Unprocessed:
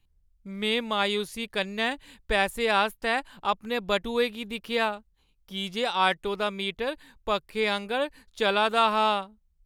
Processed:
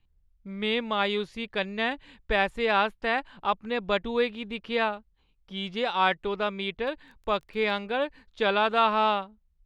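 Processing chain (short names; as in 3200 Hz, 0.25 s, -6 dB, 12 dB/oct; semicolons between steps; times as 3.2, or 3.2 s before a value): LPF 3500 Hz 12 dB/oct; 6.77–7.7 crackle 12/s -> 47/s -42 dBFS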